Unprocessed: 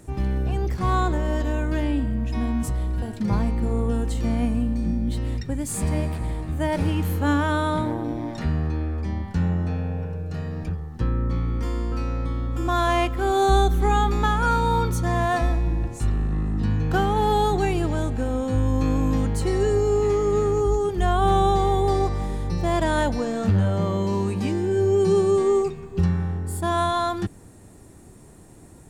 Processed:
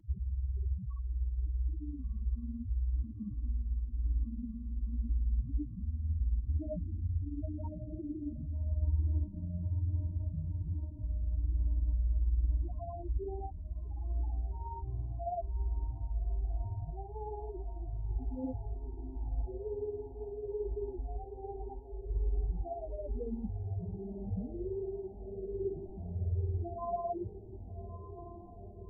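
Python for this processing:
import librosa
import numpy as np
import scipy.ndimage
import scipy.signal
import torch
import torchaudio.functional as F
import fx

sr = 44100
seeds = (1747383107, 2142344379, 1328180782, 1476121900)

p1 = scipy.signal.sosfilt(scipy.signal.butter(2, 1100.0, 'lowpass', fs=sr, output='sos'), x)
p2 = fx.over_compress(p1, sr, threshold_db=-26.0, ratio=-1.0)
p3 = p2 * (1.0 - 0.82 / 2.0 + 0.82 / 2.0 * np.cos(2.0 * np.pi * 18.0 * (np.arange(len(p2)) / sr)))
p4 = fx.spec_topn(p3, sr, count=2)
p5 = p4 + fx.echo_diffused(p4, sr, ms=1224, feedback_pct=76, wet_db=-12.5, dry=0)
y = fx.comb_cascade(p5, sr, direction='falling', hz=1.2)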